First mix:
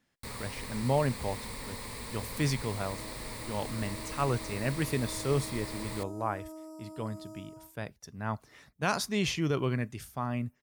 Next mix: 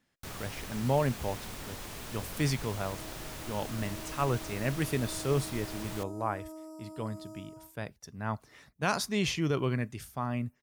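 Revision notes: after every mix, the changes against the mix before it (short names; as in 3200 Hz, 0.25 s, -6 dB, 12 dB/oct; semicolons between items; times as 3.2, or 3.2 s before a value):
first sound: remove ripple EQ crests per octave 0.95, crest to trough 10 dB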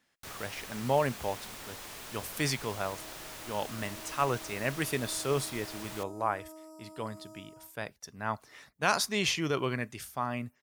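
speech +4.0 dB; master: add low shelf 310 Hz -11.5 dB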